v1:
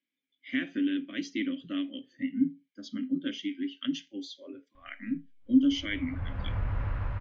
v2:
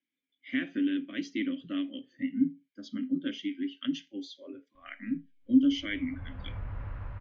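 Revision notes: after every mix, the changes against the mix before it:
background -7.0 dB; master: add treble shelf 4.9 kHz -7 dB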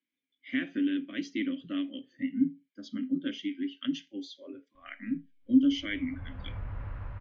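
no change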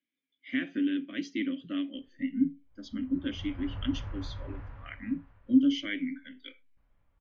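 background: entry -2.80 s

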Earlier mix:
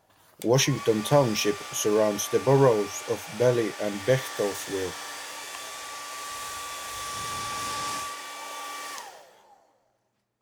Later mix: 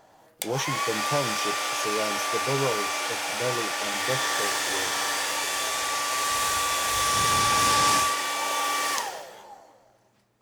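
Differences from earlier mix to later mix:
speech -8.0 dB; background +10.5 dB

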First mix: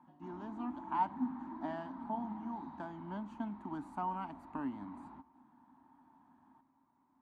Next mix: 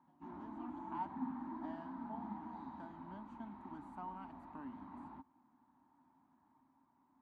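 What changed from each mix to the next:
speech -10.0 dB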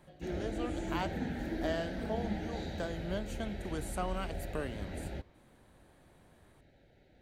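background: add Butterworth band-stop 1.1 kHz, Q 1.6; master: remove two resonant band-passes 490 Hz, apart 1.8 oct

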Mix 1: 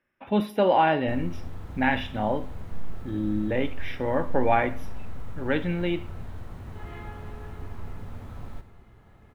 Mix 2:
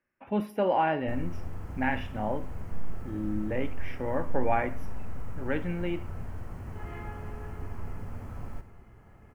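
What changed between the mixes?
speech -5.0 dB; master: add peaking EQ 3.7 kHz -14.5 dB 0.35 oct

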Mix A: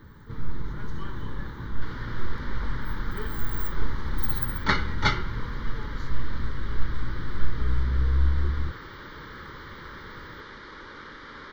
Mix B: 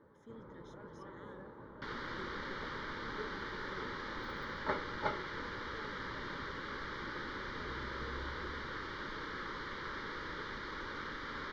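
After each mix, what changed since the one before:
first sound: add band-pass filter 570 Hz, Q 2.4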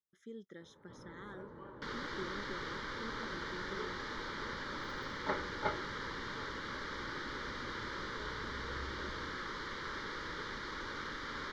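speech +6.0 dB; first sound: entry +0.60 s; second sound: add peaking EQ 8.6 kHz +11.5 dB 1.2 oct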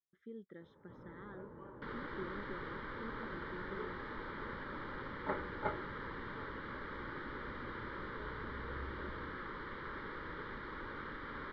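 master: add distance through air 480 m

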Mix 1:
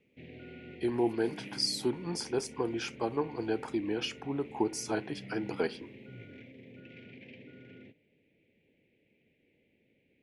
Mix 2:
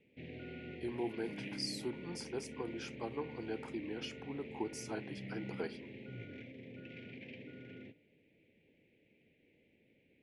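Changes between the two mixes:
speech -9.5 dB; background: send +8.5 dB

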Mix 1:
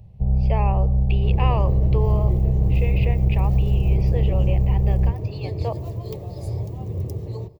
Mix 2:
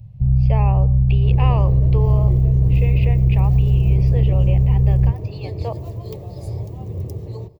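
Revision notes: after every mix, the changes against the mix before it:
first sound: add ten-band graphic EQ 125 Hz +10 dB, 250 Hz -4 dB, 500 Hz -9 dB, 1 kHz -12 dB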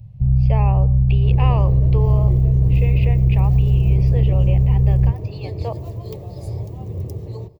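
no change

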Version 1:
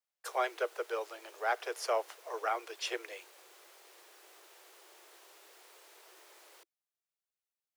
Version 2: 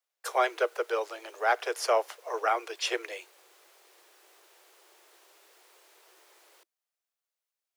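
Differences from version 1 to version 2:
speech +6.5 dB; reverb: off

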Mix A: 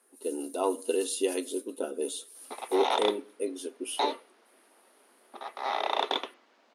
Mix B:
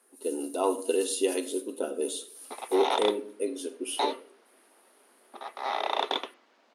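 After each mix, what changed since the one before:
speech: send +11.5 dB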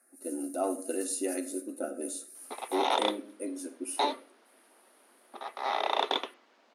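speech: add static phaser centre 650 Hz, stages 8

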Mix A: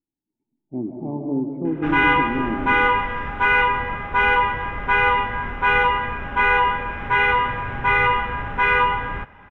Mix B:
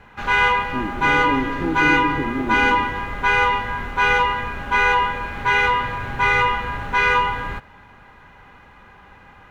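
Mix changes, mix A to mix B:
background: entry -1.65 s; master: remove Savitzky-Golay filter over 25 samples

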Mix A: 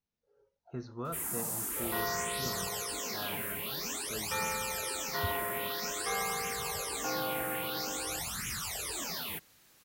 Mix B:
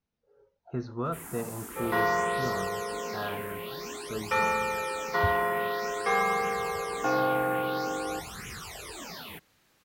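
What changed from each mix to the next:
speech +7.0 dB; second sound +10.0 dB; master: add treble shelf 5 kHz -10.5 dB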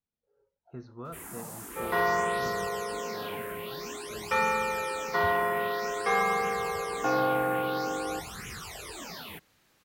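speech -9.5 dB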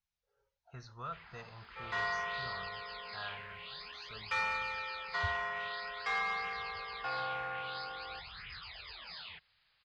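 speech +10.5 dB; first sound: add brick-wall FIR low-pass 5.1 kHz; master: add amplifier tone stack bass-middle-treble 10-0-10

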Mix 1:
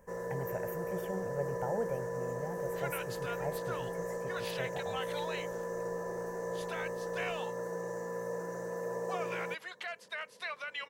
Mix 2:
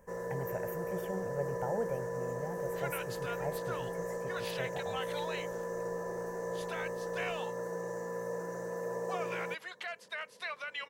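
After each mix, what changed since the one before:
no change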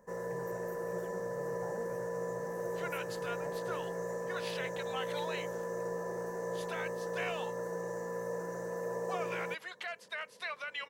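speech -10.5 dB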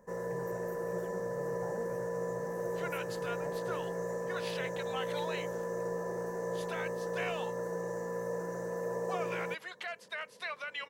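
master: add bass shelf 480 Hz +3 dB

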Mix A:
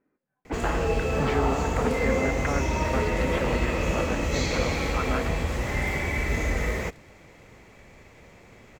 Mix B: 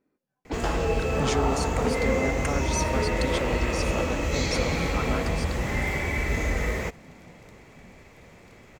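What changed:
speech: remove resonant low-pass 1.9 kHz, resonance Q 1.5; second sound: entry +1.55 s

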